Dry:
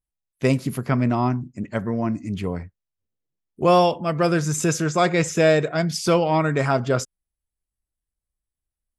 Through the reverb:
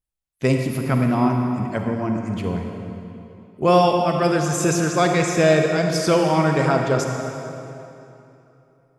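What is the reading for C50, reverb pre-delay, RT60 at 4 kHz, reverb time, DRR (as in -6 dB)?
3.0 dB, 40 ms, 2.3 s, 3.0 s, 3.0 dB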